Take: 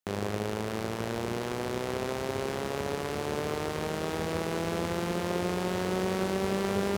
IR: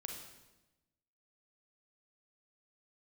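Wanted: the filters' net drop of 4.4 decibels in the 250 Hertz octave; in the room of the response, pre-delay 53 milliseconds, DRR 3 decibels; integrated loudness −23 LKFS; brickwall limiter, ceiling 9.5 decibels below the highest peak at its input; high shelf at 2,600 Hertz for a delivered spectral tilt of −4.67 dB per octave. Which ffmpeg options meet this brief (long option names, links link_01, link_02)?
-filter_complex "[0:a]equalizer=frequency=250:width_type=o:gain=-7,highshelf=frequency=2600:gain=-5,alimiter=level_in=3dB:limit=-24dB:level=0:latency=1,volume=-3dB,asplit=2[link_01][link_02];[1:a]atrim=start_sample=2205,adelay=53[link_03];[link_02][link_03]afir=irnorm=-1:irlink=0,volume=-0.5dB[link_04];[link_01][link_04]amix=inputs=2:normalize=0,volume=14.5dB"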